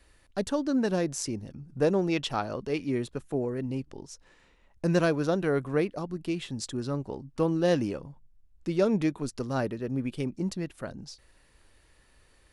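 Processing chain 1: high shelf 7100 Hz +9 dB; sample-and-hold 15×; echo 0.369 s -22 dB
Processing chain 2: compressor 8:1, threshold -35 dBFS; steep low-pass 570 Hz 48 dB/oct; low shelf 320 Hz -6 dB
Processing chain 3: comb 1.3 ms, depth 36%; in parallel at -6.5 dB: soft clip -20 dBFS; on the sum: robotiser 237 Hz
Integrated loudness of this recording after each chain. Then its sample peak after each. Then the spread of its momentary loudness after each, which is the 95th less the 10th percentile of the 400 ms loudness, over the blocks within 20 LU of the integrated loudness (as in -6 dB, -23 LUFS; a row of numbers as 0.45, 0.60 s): -29.5, -44.5, -30.0 LUFS; -11.5, -29.0, -9.5 dBFS; 14, 7, 13 LU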